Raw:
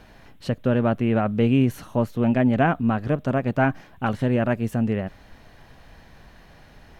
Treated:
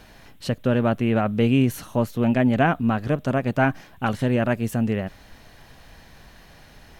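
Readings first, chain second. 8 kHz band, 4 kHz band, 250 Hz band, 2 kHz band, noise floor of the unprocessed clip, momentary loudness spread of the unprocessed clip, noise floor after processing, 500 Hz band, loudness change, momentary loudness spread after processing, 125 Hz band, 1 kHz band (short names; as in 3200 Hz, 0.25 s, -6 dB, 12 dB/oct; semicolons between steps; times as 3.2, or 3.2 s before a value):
n/a, +4.0 dB, 0.0 dB, +1.5 dB, -50 dBFS, 9 LU, -50 dBFS, 0.0 dB, 0.0 dB, 8 LU, 0.0 dB, +0.5 dB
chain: high shelf 3400 Hz +8.5 dB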